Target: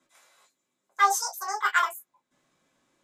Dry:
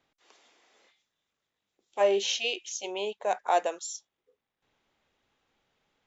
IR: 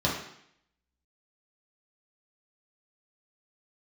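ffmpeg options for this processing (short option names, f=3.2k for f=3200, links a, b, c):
-filter_complex "[1:a]atrim=start_sample=2205,afade=t=out:st=0.14:d=0.01,atrim=end_sample=6615[a];[0:a][a]afir=irnorm=-1:irlink=0,asetrate=88200,aresample=44100,volume=-8.5dB"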